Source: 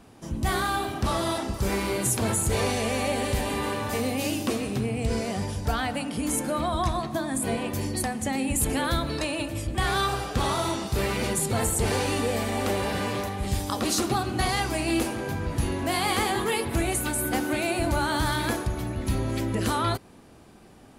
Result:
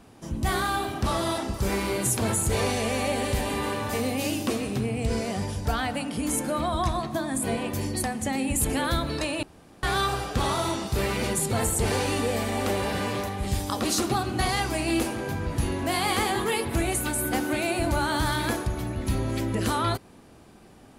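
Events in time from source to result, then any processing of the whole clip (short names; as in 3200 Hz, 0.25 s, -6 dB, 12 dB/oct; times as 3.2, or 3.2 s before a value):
9.43–9.83 room tone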